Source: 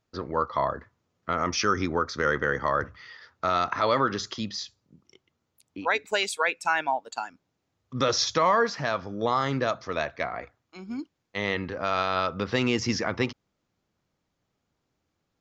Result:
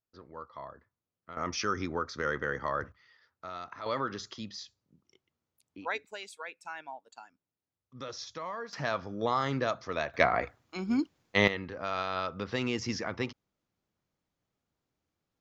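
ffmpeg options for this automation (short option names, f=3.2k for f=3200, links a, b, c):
-af "asetnsamples=n=441:p=0,asendcmd='1.37 volume volume -7dB;2.92 volume volume -16.5dB;3.86 volume volume -9dB;6.05 volume volume -17dB;8.73 volume volume -4dB;10.14 volume volume 6dB;11.48 volume volume -7dB',volume=-18dB"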